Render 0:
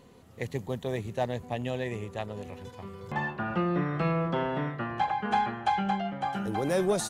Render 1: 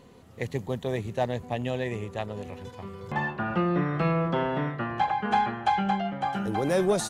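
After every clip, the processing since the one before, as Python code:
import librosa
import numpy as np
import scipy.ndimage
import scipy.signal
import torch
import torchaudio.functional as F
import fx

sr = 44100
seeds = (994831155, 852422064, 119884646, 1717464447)

y = fx.high_shelf(x, sr, hz=8800.0, db=-4.0)
y = y * librosa.db_to_amplitude(2.5)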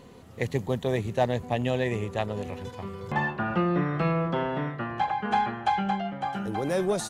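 y = fx.rider(x, sr, range_db=5, speed_s=2.0)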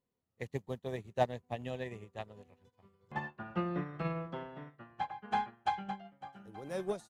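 y = fx.upward_expand(x, sr, threshold_db=-43.0, expansion=2.5)
y = y * librosa.db_to_amplitude(-4.0)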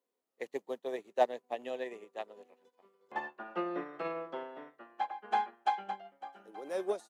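y = scipy.signal.sosfilt(scipy.signal.butter(4, 290.0, 'highpass', fs=sr, output='sos'), x)
y = fx.peak_eq(y, sr, hz=540.0, db=3.5, octaves=1.8)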